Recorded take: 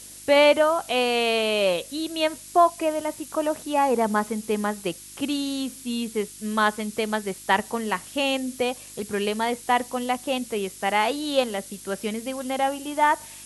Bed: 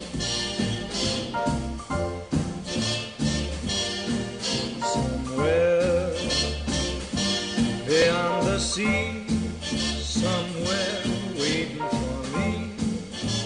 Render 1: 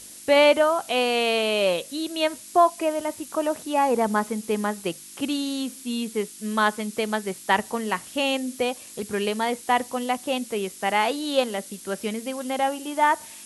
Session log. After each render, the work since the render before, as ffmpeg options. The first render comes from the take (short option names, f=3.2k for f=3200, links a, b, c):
-af "bandreject=f=50:t=h:w=4,bandreject=f=100:t=h:w=4,bandreject=f=150:t=h:w=4"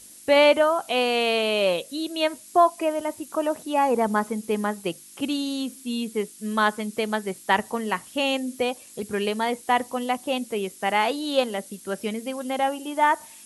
-af "afftdn=nr=6:nf=-43"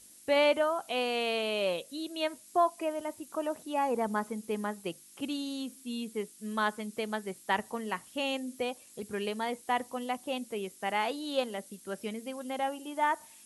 -af "volume=-8.5dB"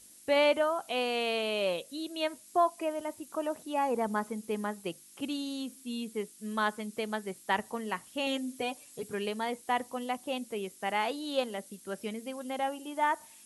-filter_complex "[0:a]asettb=1/sr,asplit=3[a][b][c];[a]atrim=end=8.264[d];[b]atrim=start=8.26:end=9.14,asetpts=PTS-STARTPTS,afade=t=in:d=0.004:c=qsin,afade=t=out:st=0.876:d=0.004:c=qsin,aecho=1:1:6.9:0.65,atrim=end_sample=38808[e];[c]atrim=start=9.136[f];[d][e]acrossfade=d=0.004:c1=hsin:c2=qsin[g];[g][f]acrossfade=d=0.004:c1=qsin:c2=hsin"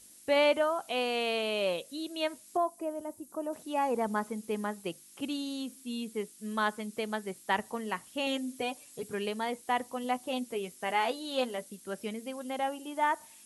-filter_complex "[0:a]asettb=1/sr,asplit=3[a][b][c];[a]atrim=end=2.574[d];[b]atrim=start=2.57:end=3.53,asetpts=PTS-STARTPTS,afade=t=in:d=0.004:c=qsin,afade=t=out:st=0.956:d=0.004:c=qsin,equalizer=f=2.7k:t=o:w=2.4:g=-14[e];[c]atrim=start=3.526[f];[d][e]acrossfade=d=0.004:c1=hsin:c2=qsin[g];[g][f]acrossfade=d=0.004:c1=qsin:c2=hsin,asettb=1/sr,asplit=3[h][i][j];[h]atrim=end=10.034[k];[i]atrim=start=10.03:end=11.64,asetpts=PTS-STARTPTS,afade=t=in:d=0.004:c=qsin,afade=t=out:st=1.606:d=0.004:c=qsin,asplit=2[l][m];[m]adelay=12,volume=-6.5dB[n];[l][n]amix=inputs=2:normalize=0,atrim=end_sample=71001[o];[j]atrim=start=11.636[p];[k][o]acrossfade=d=0.004:c1=hsin:c2=qsin[q];[q][p]acrossfade=d=0.004:c1=qsin:c2=hsin"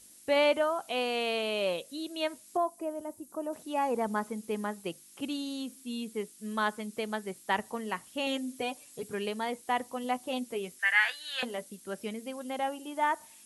-filter_complex "[0:a]asettb=1/sr,asplit=3[a][b][c];[a]atrim=end=10.794[d];[b]atrim=start=10.79:end=11.43,asetpts=PTS-STARTPTS,afade=t=in:d=0.004:c=qsin,afade=t=out:st=0.636:d=0.004:c=qsin,highpass=f=1.7k:t=q:w=9.5[e];[c]atrim=start=11.426[f];[d][e]acrossfade=d=0.004:c1=hsin:c2=qsin[g];[g][f]acrossfade=d=0.004:c1=qsin:c2=hsin"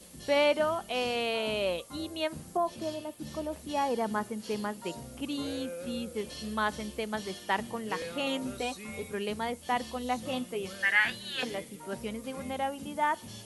-filter_complex "[1:a]volume=-19dB[a];[0:a][a]amix=inputs=2:normalize=0"